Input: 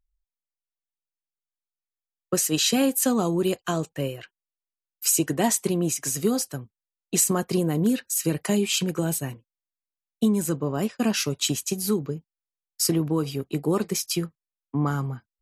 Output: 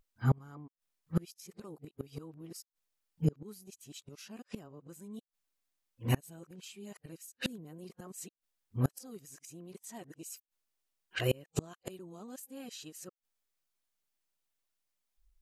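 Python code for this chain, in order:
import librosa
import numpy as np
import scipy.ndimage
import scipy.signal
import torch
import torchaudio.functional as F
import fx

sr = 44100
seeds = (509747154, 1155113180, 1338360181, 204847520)

y = np.flip(x).copy()
y = fx.gate_flip(y, sr, shuts_db=-23.0, range_db=-33)
y = y * 10.0 ** (8.0 / 20.0)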